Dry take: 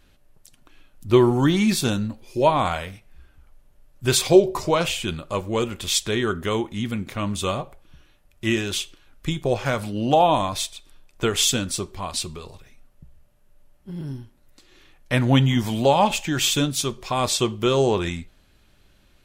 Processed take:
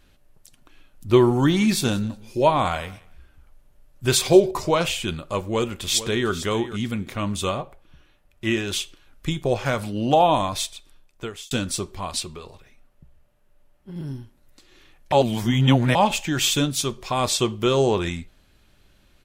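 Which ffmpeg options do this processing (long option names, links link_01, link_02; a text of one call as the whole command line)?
ffmpeg -i in.wav -filter_complex "[0:a]asettb=1/sr,asplit=3[link_01][link_02][link_03];[link_01]atrim=end=1.274[link_04];[link_02]atrim=start=1.27:end=4.51,asetpts=PTS-STARTPTS,afade=type=in:duration=0.004:curve=qsin,afade=type=out:start_time=3.236:duration=0.004:curve=qsin,aecho=1:1:183|366:0.075|0.0135,atrim=end_sample=142884[link_05];[link_03]atrim=start=4.506[link_06];[link_04][link_05]acrossfade=duration=0.004:curve1=hsin:curve2=qsin[link_07];[link_07][link_06]acrossfade=duration=0.004:curve1=qsin:curve2=hsin,asplit=2[link_08][link_09];[link_09]afade=type=in:start_time=5.42:duration=0.01,afade=type=out:start_time=6.31:duration=0.01,aecho=0:1:450|900:0.223872|0.0223872[link_10];[link_08][link_10]amix=inputs=2:normalize=0,asettb=1/sr,asplit=3[link_11][link_12][link_13];[link_11]atrim=end=7.494[link_14];[link_12]atrim=start=7.49:end=8.68,asetpts=PTS-STARTPTS,afade=type=in:duration=0.004:curve=qsin,afade=type=out:start_time=1.186:duration=0.004:curve=qsin,bass=frequency=250:gain=-2,treble=frequency=4000:gain=-5[link_15];[link_13]atrim=start=8.676[link_16];[link_14][link_15]acrossfade=duration=0.004:curve1=hsin:curve2=qsin[link_17];[link_17][link_16]acrossfade=duration=0.004:curve1=qsin:curve2=hsin,asettb=1/sr,asplit=3[link_18][link_19][link_20];[link_18]atrim=end=12.204[link_21];[link_19]atrim=start=12.2:end=13.96,asetpts=PTS-STARTPTS,afade=type=in:duration=0.004:curve=qsin,afade=type=out:start_time=1.756:duration=0.004:curve=qsin,bass=frequency=250:gain=-4,treble=frequency=4000:gain=-5[link_22];[link_20]atrim=start=13.956[link_23];[link_21][link_22]acrossfade=duration=0.004:curve1=hsin:curve2=qsin[link_24];[link_24][link_23]acrossfade=duration=0.004:curve1=qsin:curve2=hsin,asplit=4[link_25][link_26][link_27][link_28];[link_25]atrim=end=11.51,asetpts=PTS-STARTPTS,afade=type=out:start_time=10.73:duration=0.78[link_29];[link_26]atrim=start=11.51:end=15.122,asetpts=PTS-STARTPTS,afade=type=in:duration=0.004:curve=hsin[link_30];[link_27]atrim=start=15.118:end=15.952,asetpts=PTS-STARTPTS,areverse[link_31];[link_28]atrim=start=15.948[link_32];[link_29][link_30]concat=n=2:v=0:a=1[link_33];[link_33][link_31]acrossfade=duration=0.004:curve1=hsin:curve2=hsin[link_34];[link_34][link_32]acrossfade=duration=0.004:curve1=hsin:curve2=hsin" out.wav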